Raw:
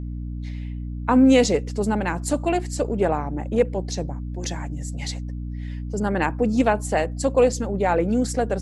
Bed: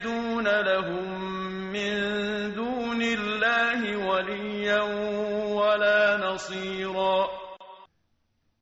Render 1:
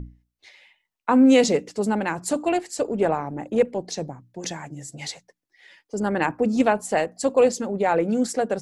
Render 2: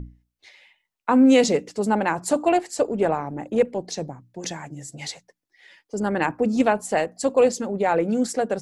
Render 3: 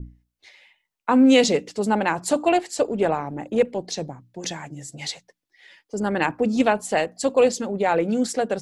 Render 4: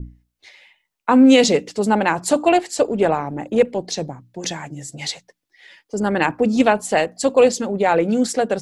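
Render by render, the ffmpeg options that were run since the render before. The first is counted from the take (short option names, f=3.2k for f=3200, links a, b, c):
-af "bandreject=f=60:t=h:w=6,bandreject=f=120:t=h:w=6,bandreject=f=180:t=h:w=6,bandreject=f=240:t=h:w=6,bandreject=f=300:t=h:w=6"
-filter_complex "[0:a]asettb=1/sr,asplit=3[a][b][c];[a]atrim=end=1.904[d];[b]atrim=start=1.9:end=2.85,asetpts=PTS-STARTPTS,afade=t=in:d=0.004:c=qsin,afade=t=out:st=0.946:d=0.004:c=qsin,equalizer=f=800:w=0.78:g=5[e];[c]atrim=start=2.846[f];[d][e]acrossfade=d=0.004:c1=hsin:c2=qsin[g];[g][f]acrossfade=d=0.004:c1=qsin:c2=hsin"
-af "adynamicequalizer=threshold=0.00708:dfrequency=3400:dqfactor=1.3:tfrequency=3400:tqfactor=1.3:attack=5:release=100:ratio=0.375:range=3:mode=boostabove:tftype=bell"
-af "volume=4dB,alimiter=limit=-2dB:level=0:latency=1"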